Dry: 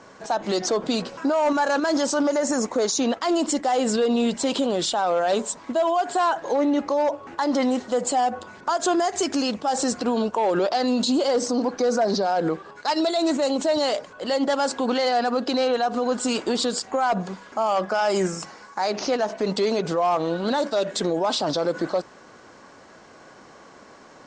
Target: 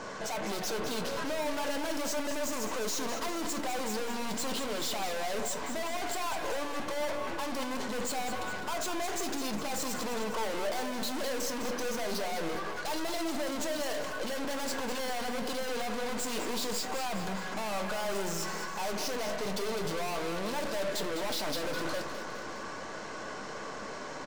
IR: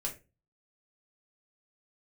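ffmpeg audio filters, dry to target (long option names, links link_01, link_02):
-filter_complex "[0:a]aeval=exprs='(tanh(141*val(0)+0.4)-tanh(0.4))/141':channel_layout=same,aecho=1:1:205|410|615|820|1025|1230:0.355|0.195|0.107|0.059|0.0325|0.0179,asplit=2[link_01][link_02];[1:a]atrim=start_sample=2205,lowshelf=frequency=220:gain=-10[link_03];[link_02][link_03]afir=irnorm=-1:irlink=0,volume=-4dB[link_04];[link_01][link_04]amix=inputs=2:normalize=0,volume=5.5dB"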